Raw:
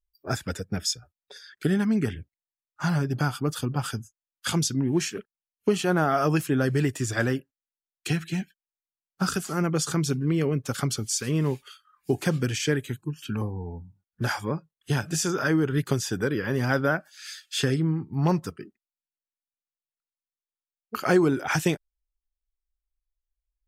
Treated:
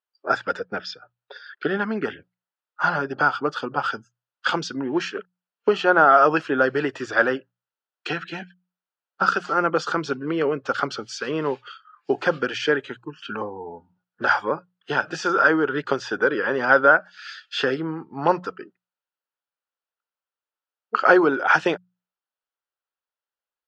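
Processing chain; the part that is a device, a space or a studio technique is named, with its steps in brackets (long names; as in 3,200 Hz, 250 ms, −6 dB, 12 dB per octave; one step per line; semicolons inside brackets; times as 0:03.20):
phone earpiece (loudspeaker in its box 430–4,000 Hz, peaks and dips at 520 Hz +4 dB, 900 Hz +3 dB, 1,400 Hz +7 dB, 2,200 Hz −7 dB, 3,700 Hz −5 dB)
0:00.59–0:02.03: low-pass filter 5,100 Hz 24 dB per octave
mains-hum notches 60/120/180 Hz
level +7 dB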